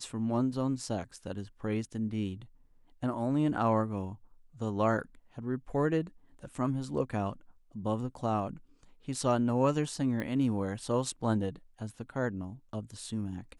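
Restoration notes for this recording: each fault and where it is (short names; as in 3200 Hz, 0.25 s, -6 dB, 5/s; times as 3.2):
10.2 pop -23 dBFS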